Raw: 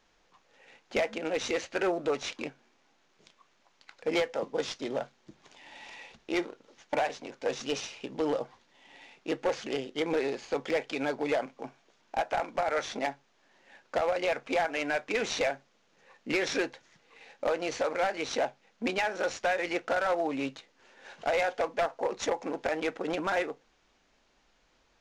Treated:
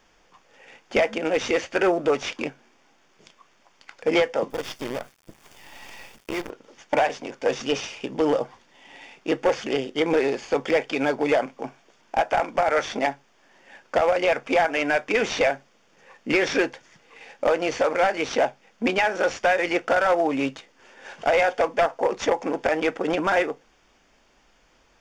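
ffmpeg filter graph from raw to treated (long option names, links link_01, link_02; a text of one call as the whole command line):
ffmpeg -i in.wav -filter_complex "[0:a]asettb=1/sr,asplit=3[link_01][link_02][link_03];[link_01]atrim=end=4.504[link_04];[link_02]atrim=start=4.5:end=6.5,asetpts=PTS-STARTPTS,afade=type=in:duration=0.004:curve=qsin,afade=type=out:start_time=1.996:duration=0.004:curve=qsin,acompressor=threshold=-36dB:ratio=3:attack=3.2:release=140:knee=1:detection=peak,acrusher=bits=7:dc=4:mix=0:aa=0.000001[link_05];[link_03]atrim=start=6.496[link_06];[link_04][link_05]acrossfade=duration=0.004:curve1=hsin:curve2=qsin[link_07];[link_07][link_06]acrossfade=duration=0.004:curve1=qsin:curve2=hsin,acrossover=split=5400[link_08][link_09];[link_09]acompressor=threshold=-52dB:ratio=4:attack=1:release=60[link_10];[link_08][link_10]amix=inputs=2:normalize=0,bandreject=frequency=4000:width=6.1,volume=8dB" out.wav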